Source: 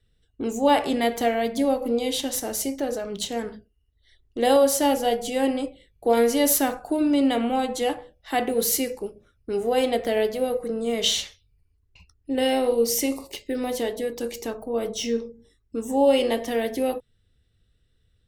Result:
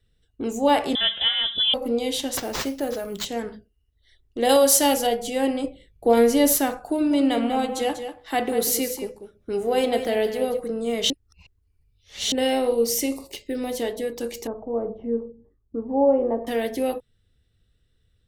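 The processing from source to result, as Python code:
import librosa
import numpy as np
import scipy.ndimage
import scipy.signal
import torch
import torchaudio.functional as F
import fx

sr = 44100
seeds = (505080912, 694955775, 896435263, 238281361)

y = fx.freq_invert(x, sr, carrier_hz=3700, at=(0.95, 1.74))
y = fx.sample_hold(y, sr, seeds[0], rate_hz=11000.0, jitter_pct=0, at=(2.37, 3.25))
y = fx.high_shelf(y, sr, hz=2100.0, db=8.5, at=(4.49, 5.07))
y = fx.low_shelf(y, sr, hz=430.0, db=5.5, at=(5.64, 6.58))
y = fx.echo_single(y, sr, ms=192, db=-10.0, at=(7.1, 10.59), fade=0.02)
y = fx.dynamic_eq(y, sr, hz=1100.0, q=0.91, threshold_db=-45.0, ratio=4.0, max_db=-4, at=(12.97, 13.82))
y = fx.lowpass(y, sr, hz=1100.0, slope=24, at=(14.47, 16.47))
y = fx.edit(y, sr, fx.reverse_span(start_s=11.1, length_s=1.22), tone=tone)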